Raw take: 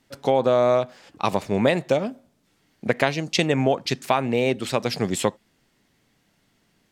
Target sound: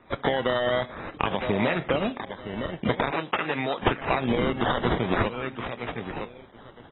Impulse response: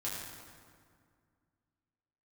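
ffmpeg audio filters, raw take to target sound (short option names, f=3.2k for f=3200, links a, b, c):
-filter_complex "[0:a]alimiter=limit=-14.5dB:level=0:latency=1:release=124,asettb=1/sr,asplit=3[a][b][c];[a]atrim=end=4.544[d];[b]atrim=start=4.54:end=5.06,asetpts=PTS-STARTPTS,afade=t=in:d=0.004:c=qsin,afade=t=out:st=0.516:d=0.004:c=qsin,asplit=2[e][f];[f]adelay=17,volume=-8dB[g];[e][g]amix=inputs=2:normalize=0,atrim=end_sample=22932[h];[c]atrim=start=5.056[i];[d][h]acrossfade=d=0.004:c1=hsin:c2=qsin[j];[j][i]acrossfade=d=0.004:c1=qsin:c2=hsin,asplit=2[k][l];[l]adelay=962,lowpass=f=3.6k:p=1,volume=-14dB,asplit=2[m][n];[n]adelay=962,lowpass=f=3.6k:p=1,volume=0.2[o];[k][m][o]amix=inputs=3:normalize=0,acrusher=bits=9:mode=log:mix=0:aa=0.000001,equalizer=f=3.3k:w=0.63:g=12,acrusher=samples=14:mix=1:aa=0.000001:lfo=1:lforange=8.4:lforate=0.48,acompressor=threshold=-25dB:ratio=16,asettb=1/sr,asplit=3[p][q][r];[p]atrim=end=3.114[s];[q]atrim=start=3.11:end=3.83,asetpts=PTS-STARTPTS,afade=t=in:d=0.004:c=qsin,afade=t=out:st=0.716:d=0.004:c=qsin,highpass=f=460:p=1[t];[r]atrim=start=3.826[u];[s][t]acrossfade=d=0.004:c1=hsin:c2=qsin[v];[v][u]acrossfade=d=0.004:c1=qsin:c2=hsin,volume=5dB" -ar 22050 -c:a aac -b:a 16k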